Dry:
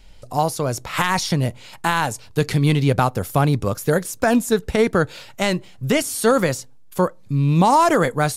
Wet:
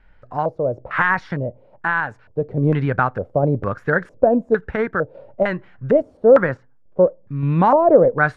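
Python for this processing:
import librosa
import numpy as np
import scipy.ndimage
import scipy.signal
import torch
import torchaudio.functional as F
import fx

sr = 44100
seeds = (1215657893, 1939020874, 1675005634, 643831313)

y = fx.high_shelf(x, sr, hz=3000.0, db=-11.5, at=(6.17, 7.0))
y = fx.tremolo_random(y, sr, seeds[0], hz=3.5, depth_pct=55)
y = fx.filter_lfo_lowpass(y, sr, shape='square', hz=1.1, low_hz=570.0, high_hz=1600.0, q=4.2)
y = y * librosa.db_to_amplitude(-1.5)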